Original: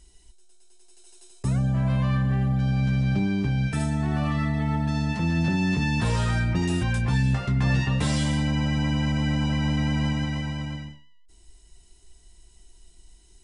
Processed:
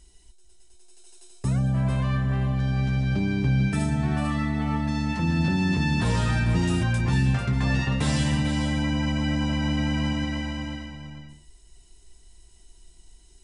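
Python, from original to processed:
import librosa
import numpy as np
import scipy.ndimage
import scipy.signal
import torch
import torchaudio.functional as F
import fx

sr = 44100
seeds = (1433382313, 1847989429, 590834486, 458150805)

y = x + 10.0 ** (-8.5 / 20.0) * np.pad(x, (int(445 * sr / 1000.0), 0))[:len(x)]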